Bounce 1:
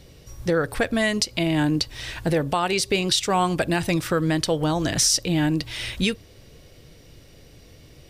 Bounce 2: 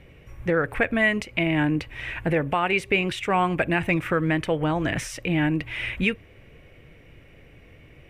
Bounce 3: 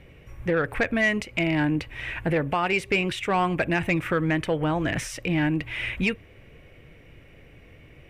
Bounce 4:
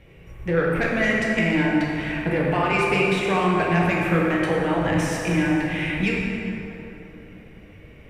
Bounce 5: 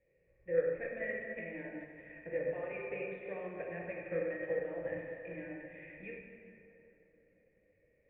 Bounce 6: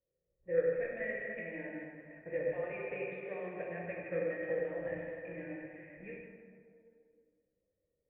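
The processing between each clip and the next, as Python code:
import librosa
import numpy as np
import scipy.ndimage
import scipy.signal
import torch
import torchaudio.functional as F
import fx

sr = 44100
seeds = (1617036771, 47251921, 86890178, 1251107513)

y1 = fx.high_shelf_res(x, sr, hz=3300.0, db=-12.0, q=3.0)
y1 = y1 * librosa.db_to_amplitude(-1.5)
y2 = 10.0 ** (-13.5 / 20.0) * np.tanh(y1 / 10.0 ** (-13.5 / 20.0))
y3 = fx.rev_plate(y2, sr, seeds[0], rt60_s=3.4, hf_ratio=0.5, predelay_ms=0, drr_db=-4.0)
y3 = y3 * librosa.db_to_amplitude(-2.0)
y4 = fx.formant_cascade(y3, sr, vowel='e')
y4 = fx.upward_expand(y4, sr, threshold_db=-42.0, expansion=1.5)
y4 = y4 * librosa.db_to_amplitude(-3.0)
y5 = fx.noise_reduce_blind(y4, sr, reduce_db=13)
y5 = fx.echo_split(y5, sr, split_hz=900.0, low_ms=105, high_ms=159, feedback_pct=52, wet_db=-7.5)
y5 = fx.env_lowpass(y5, sr, base_hz=880.0, full_db=-33.0)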